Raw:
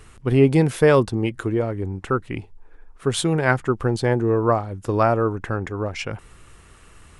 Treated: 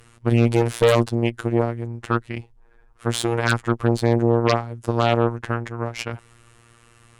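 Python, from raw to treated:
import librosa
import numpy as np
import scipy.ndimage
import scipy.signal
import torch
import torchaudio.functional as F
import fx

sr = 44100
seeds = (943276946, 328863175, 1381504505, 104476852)

y = fx.robotise(x, sr, hz=117.0)
y = fx.cheby_harmonics(y, sr, harmonics=(5, 6, 7), levels_db=(-9, -18, -13), full_scale_db=-2.5)
y = y * librosa.db_to_amplitude(-2.5)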